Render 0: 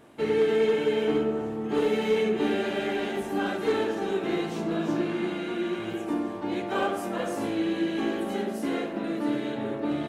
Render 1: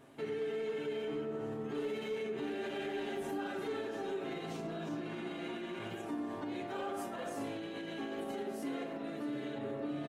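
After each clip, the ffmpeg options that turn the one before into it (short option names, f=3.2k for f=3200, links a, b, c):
-af "dynaudnorm=f=200:g=17:m=4dB,alimiter=level_in=2.5dB:limit=-24dB:level=0:latency=1:release=139,volume=-2.5dB,aecho=1:1:7.4:0.56,volume=-6dB"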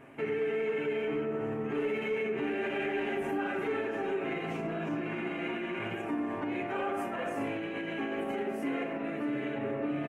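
-af "highshelf=f=3.1k:t=q:w=3:g=-8,volume=5.5dB"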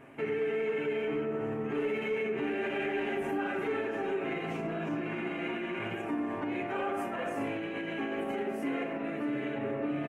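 -af anull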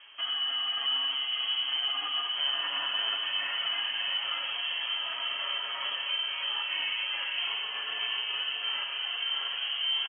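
-filter_complex "[0:a]asplit=2[a][b];[b]aecho=0:1:632:0.335[c];[a][c]amix=inputs=2:normalize=0,lowpass=f=2.9k:t=q:w=0.5098,lowpass=f=2.9k:t=q:w=0.6013,lowpass=f=2.9k:t=q:w=0.9,lowpass=f=2.9k:t=q:w=2.563,afreqshift=-3400,asplit=2[d][e];[e]aecho=0:1:589|1178|1767|2356|2945|3534|4123:0.422|0.24|0.137|0.0781|0.0445|0.0254|0.0145[f];[d][f]amix=inputs=2:normalize=0"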